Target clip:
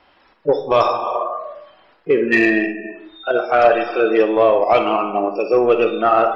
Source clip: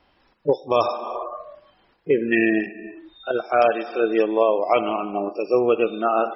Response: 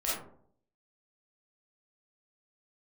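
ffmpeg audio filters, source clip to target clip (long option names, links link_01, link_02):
-filter_complex "[0:a]acontrast=60,asplit=2[link_01][link_02];[link_02]highpass=frequency=720:poles=1,volume=9dB,asoftclip=type=tanh:threshold=-2dB[link_03];[link_01][link_03]amix=inputs=2:normalize=0,lowpass=frequency=2900:poles=1,volume=-6dB,asplit=2[link_04][link_05];[1:a]atrim=start_sample=2205[link_06];[link_05][link_06]afir=irnorm=-1:irlink=0,volume=-12.5dB[link_07];[link_04][link_07]amix=inputs=2:normalize=0,volume=-3dB"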